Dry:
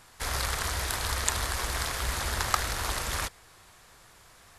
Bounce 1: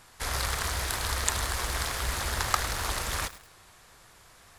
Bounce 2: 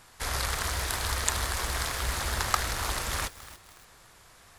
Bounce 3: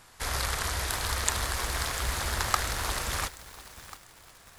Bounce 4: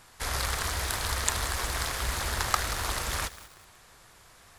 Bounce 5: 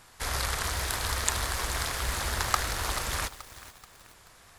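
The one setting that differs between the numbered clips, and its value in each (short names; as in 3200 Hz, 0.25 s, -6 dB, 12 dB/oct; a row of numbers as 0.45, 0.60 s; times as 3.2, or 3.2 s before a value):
lo-fi delay, time: 0.106, 0.287, 0.695, 0.186, 0.432 s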